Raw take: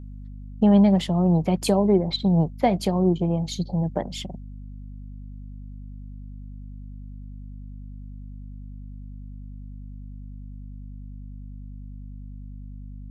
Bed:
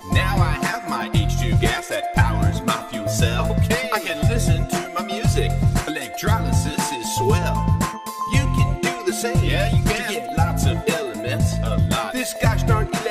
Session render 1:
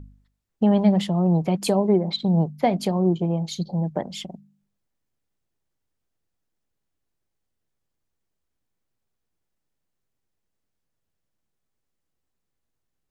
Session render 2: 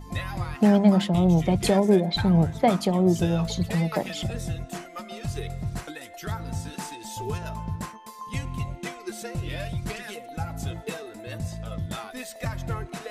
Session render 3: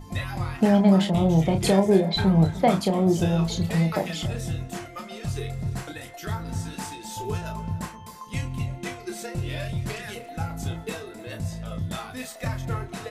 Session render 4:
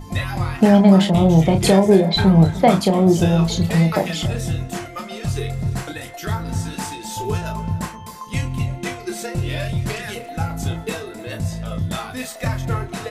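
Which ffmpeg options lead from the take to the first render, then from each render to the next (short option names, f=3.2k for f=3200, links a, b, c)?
-af "bandreject=f=50:t=h:w=4,bandreject=f=100:t=h:w=4,bandreject=f=150:t=h:w=4,bandreject=f=200:t=h:w=4,bandreject=f=250:t=h:w=4"
-filter_complex "[1:a]volume=-13dB[a];[0:a][a]amix=inputs=2:normalize=0"
-filter_complex "[0:a]asplit=2[a][b];[b]adelay=31,volume=-6dB[c];[a][c]amix=inputs=2:normalize=0,asplit=2[d][e];[e]adelay=303.2,volume=-17dB,highshelf=f=4k:g=-6.82[f];[d][f]amix=inputs=2:normalize=0"
-af "volume=6.5dB,alimiter=limit=-2dB:level=0:latency=1"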